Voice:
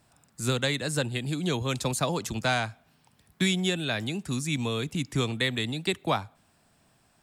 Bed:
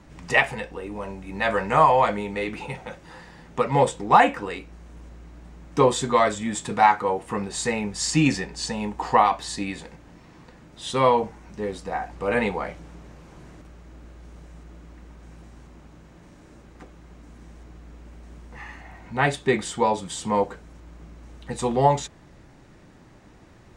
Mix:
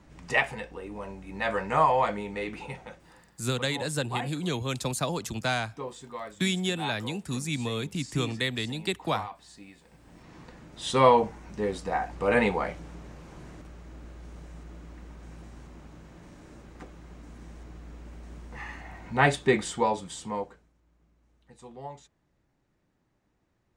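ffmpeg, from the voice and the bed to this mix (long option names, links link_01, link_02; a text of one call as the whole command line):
ffmpeg -i stem1.wav -i stem2.wav -filter_complex "[0:a]adelay=3000,volume=-2dB[link_01];[1:a]volume=14dB,afade=type=out:start_time=2.72:duration=0.65:silence=0.199526,afade=type=in:start_time=9.84:duration=0.52:silence=0.105925,afade=type=out:start_time=19.28:duration=1.44:silence=0.0749894[link_02];[link_01][link_02]amix=inputs=2:normalize=0" out.wav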